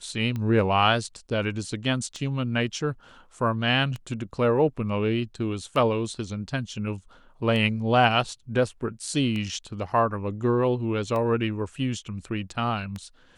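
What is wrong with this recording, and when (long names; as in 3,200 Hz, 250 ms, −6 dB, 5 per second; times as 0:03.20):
scratch tick 33 1/3 rpm −20 dBFS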